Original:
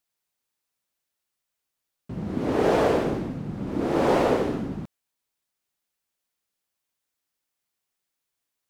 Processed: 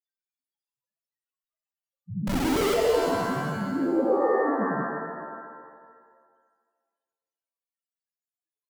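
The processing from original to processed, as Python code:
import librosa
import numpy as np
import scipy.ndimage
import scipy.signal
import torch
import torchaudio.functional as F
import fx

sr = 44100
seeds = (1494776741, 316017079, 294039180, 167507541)

y = fx.spec_topn(x, sr, count=1)
y = fx.schmitt(y, sr, flips_db=-38.5, at=(2.27, 2.74))
y = fx.rev_shimmer(y, sr, seeds[0], rt60_s=1.6, semitones=7, shimmer_db=-2, drr_db=3.5)
y = y * librosa.db_to_amplitude(8.5)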